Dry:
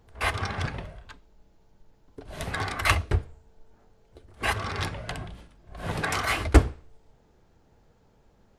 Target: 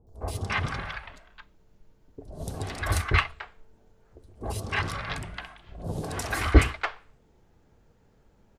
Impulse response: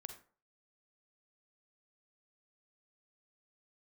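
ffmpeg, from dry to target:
-filter_complex "[0:a]acrossover=split=770|4400[link_01][link_02][link_03];[link_03]adelay=70[link_04];[link_02]adelay=290[link_05];[link_01][link_05][link_04]amix=inputs=3:normalize=0"

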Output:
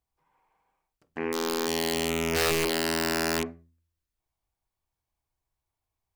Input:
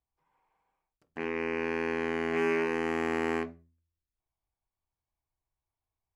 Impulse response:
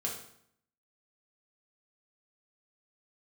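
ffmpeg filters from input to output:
-filter_complex "[0:a]asettb=1/sr,asplit=3[link_01][link_02][link_03];[link_01]atrim=end=1.194[link_04];[link_02]atrim=start=1.19:end=3.46,asetpts=PTS-STARTPTS,afade=type=in:duration=0.004:curve=qsin,afade=type=out:start_time=2.266:duration=0.004:curve=qsin,lowpass=frequency=1900:poles=1[link_05];[link_03]atrim=start=3.456[link_06];[link_04][link_05]acrossfade=duration=0.004:curve1=hsin:curve2=qsin[link_07];[link_07][link_06]acrossfade=duration=0.004:curve1=qsin:curve2=hsin,aeval=exprs='(mod(15*val(0)+1,2)-1)/15':channel_layout=same,volume=4dB"

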